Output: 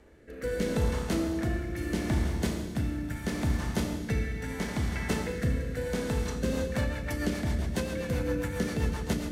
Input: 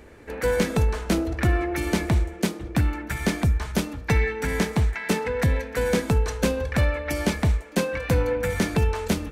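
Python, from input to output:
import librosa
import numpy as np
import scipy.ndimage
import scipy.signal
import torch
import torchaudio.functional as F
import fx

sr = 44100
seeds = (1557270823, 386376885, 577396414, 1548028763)

y = fx.notch(x, sr, hz=2400.0, q=13.0)
y = y + 10.0 ** (-13.0 / 20.0) * np.pad(y, (int(323 * sr / 1000.0), 0))[:len(y)]
y = fx.rev_schroeder(y, sr, rt60_s=1.9, comb_ms=27, drr_db=1.0)
y = fx.rotary_switch(y, sr, hz=0.75, then_hz=7.5, switch_at_s=6.1)
y = y * librosa.db_to_amplitude(-7.0)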